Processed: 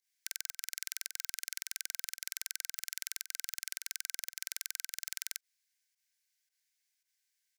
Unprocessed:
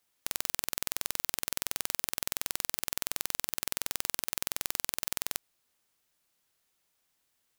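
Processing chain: rippled Chebyshev high-pass 1.5 kHz, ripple 6 dB; spectral gate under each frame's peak -25 dB strong; volume shaper 111 bpm, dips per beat 1, -13 dB, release 96 ms; trim -1.5 dB

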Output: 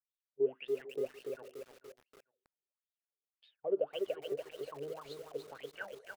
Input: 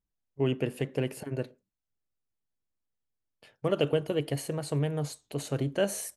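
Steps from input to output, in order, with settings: high-pass 46 Hz 6 dB/octave; treble shelf 8.8 kHz -3.5 dB; in parallel at +0.5 dB: peak limiter -21 dBFS, peak gain reduction 7.5 dB; on the sum: wah-wah 1.8 Hz 390–3800 Hz, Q 13; on a send: feedback delay 444 ms, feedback 25%, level -19 dB; on the sum: bit-crushed delay 289 ms, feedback 55%, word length 9-bit, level -4 dB; trim -1.5 dB

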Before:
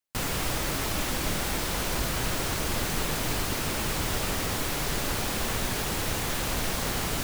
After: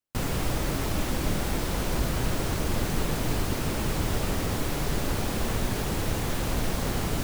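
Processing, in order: tilt shelf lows +4.5 dB, about 730 Hz

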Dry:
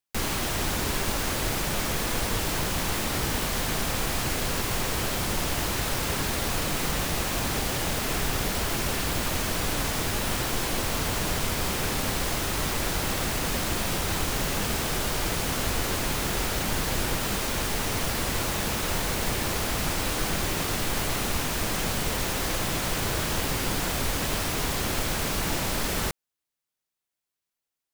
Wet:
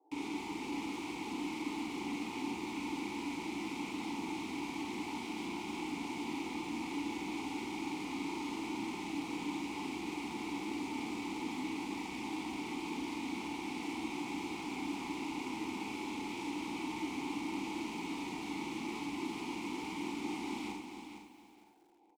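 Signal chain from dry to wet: tape speed +26%; high-pass 87 Hz 6 dB/octave; peaking EQ 760 Hz -6.5 dB 1.8 oct; peak limiter -26 dBFS, peak gain reduction 9 dB; Schmitt trigger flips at -42.5 dBFS; graphic EQ 125/2000/8000 Hz -6/-5/+5 dB; band noise 340–810 Hz -65 dBFS; vowel filter u; on a send: feedback delay 461 ms, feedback 21%, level -9 dB; on the sum: Schroeder reverb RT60 0.32 s, combs from 31 ms, DRR 2 dB; bit-crushed delay 274 ms, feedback 35%, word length 12-bit, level -10.5 dB; trim +9.5 dB

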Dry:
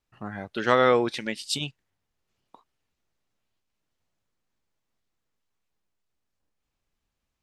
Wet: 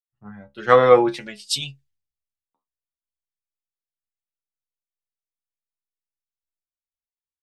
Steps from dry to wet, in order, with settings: inharmonic resonator 68 Hz, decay 0.23 s, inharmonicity 0.002; three bands expanded up and down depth 100%; trim +4.5 dB

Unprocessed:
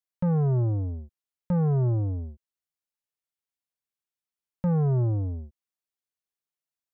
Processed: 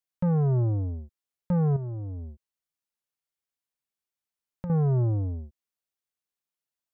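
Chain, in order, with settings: 1.76–4.70 s: compression 10:1, threshold -33 dBFS, peak gain reduction 10.5 dB

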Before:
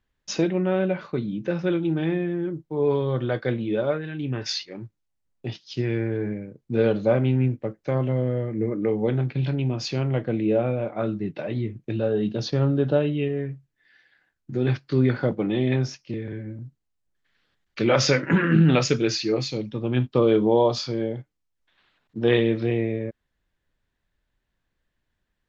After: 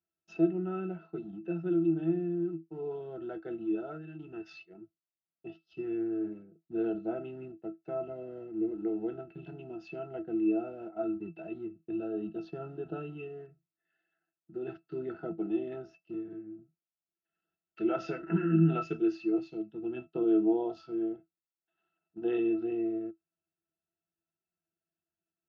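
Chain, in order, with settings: high-pass 270 Hz 12 dB/octave; in parallel at -12 dB: small samples zeroed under -30.5 dBFS; on the sum: pitch-class resonator E, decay 0.12 s

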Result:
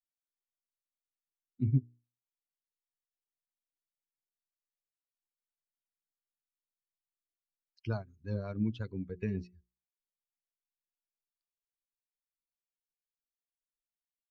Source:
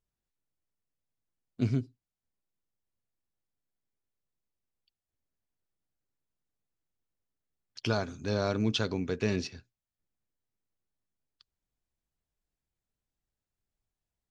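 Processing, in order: expander on every frequency bin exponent 2; tone controls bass +12 dB, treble -14 dB; hum notches 60/120/180/240/300/360/420 Hz; transient shaper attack +2 dB, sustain -4 dB; rotary cabinet horn 5.5 Hz; trim -6 dB

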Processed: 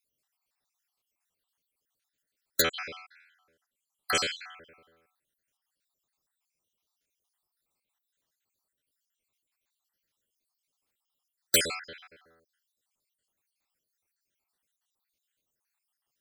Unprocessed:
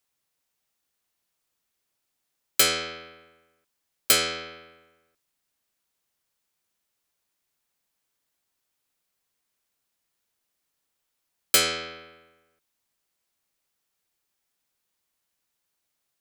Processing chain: random holes in the spectrogram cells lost 66%; 2.61–4.15 s: low-pass that closes with the level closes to 2.6 kHz, closed at -24.5 dBFS

